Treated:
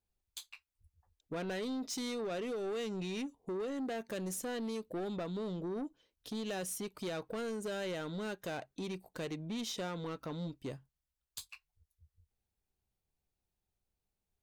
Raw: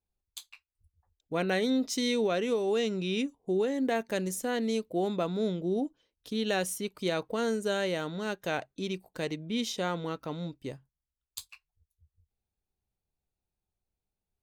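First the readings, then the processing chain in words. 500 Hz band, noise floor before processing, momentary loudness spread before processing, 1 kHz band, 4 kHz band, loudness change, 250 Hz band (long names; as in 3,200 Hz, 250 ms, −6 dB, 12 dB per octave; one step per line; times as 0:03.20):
−9.0 dB, below −85 dBFS, 13 LU, −9.0 dB, −8.5 dB, −8.5 dB, −8.0 dB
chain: downward compressor 2.5 to 1, threshold −33 dBFS, peak gain reduction 6.5 dB
soft clipping −34 dBFS, distortion −12 dB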